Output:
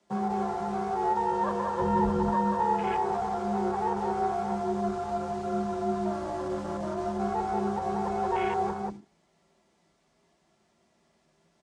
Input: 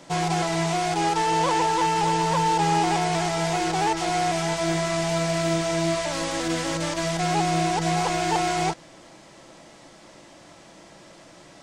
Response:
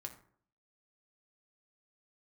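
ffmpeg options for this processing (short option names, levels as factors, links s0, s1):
-filter_complex "[0:a]aecho=1:1:183.7|262.4:0.631|0.282,acrossover=split=180|3300[s0][s1][s2];[s0]acontrast=28[s3];[s3][s1][s2]amix=inputs=3:normalize=0,asettb=1/sr,asplit=3[s4][s5][s6];[s4]atrim=end=1.794[s7];[s5]atrim=start=1.79:end=2.3,asetpts=PTS-STARTPTS,afade=t=in:d=0.004:c=qsin,afade=t=out:st=0.506:d=0.004:c=qsin,lowshelf=f=340:g=12[s8];[s6]atrim=start=2.296[s9];[s7][s8]acrossfade=d=0.004:c1=hsin:c2=qsin[s10];[s10][s9]acrossfade=d=0.004:c1=qsin:c2=hsin,asplit=2[s11][s12];[1:a]atrim=start_sample=2205[s13];[s12][s13]afir=irnorm=-1:irlink=0,volume=2.11[s14];[s11][s14]amix=inputs=2:normalize=0,flanger=delay=5.6:depth=3.1:regen=77:speed=0.84:shape=triangular,afreqshift=39,aeval=exprs='0.794*(cos(1*acos(clip(val(0)/0.794,-1,1)))-cos(1*PI/2))+0.0447*(cos(3*acos(clip(val(0)/0.794,-1,1)))-cos(3*PI/2))':c=same,asoftclip=type=tanh:threshold=0.398,afwtdn=0.0562,volume=0.398"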